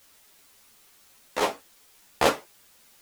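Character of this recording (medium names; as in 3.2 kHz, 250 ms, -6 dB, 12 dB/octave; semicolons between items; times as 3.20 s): random-step tremolo 3.5 Hz; a quantiser's noise floor 10-bit, dither triangular; a shimmering, thickened sound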